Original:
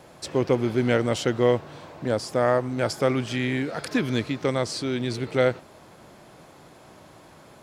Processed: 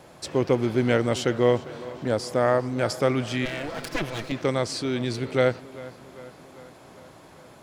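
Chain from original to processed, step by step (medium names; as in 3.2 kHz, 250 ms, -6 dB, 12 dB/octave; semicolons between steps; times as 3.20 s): 3.45–4.32 s: comb filter that takes the minimum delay 6 ms; tape echo 399 ms, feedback 68%, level -17 dB, low-pass 4.4 kHz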